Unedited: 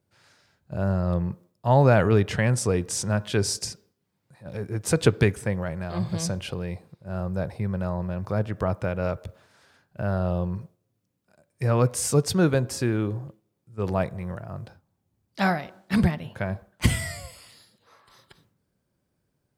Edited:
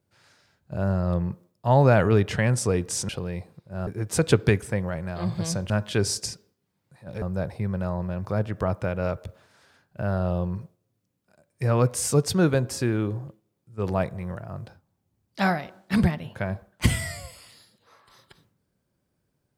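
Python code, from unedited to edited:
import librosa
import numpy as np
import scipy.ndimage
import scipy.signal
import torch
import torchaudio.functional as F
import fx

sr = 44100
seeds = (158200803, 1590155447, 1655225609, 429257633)

y = fx.edit(x, sr, fx.swap(start_s=3.09, length_s=1.52, other_s=6.44, other_length_s=0.78), tone=tone)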